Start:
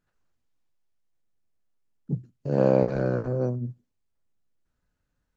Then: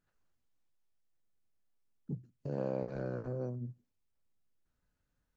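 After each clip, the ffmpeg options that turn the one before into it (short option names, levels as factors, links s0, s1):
-af "acompressor=threshold=0.0141:ratio=2,volume=0.631"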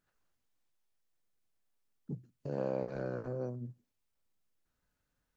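-af "lowshelf=f=270:g=-5.5,volume=1.33"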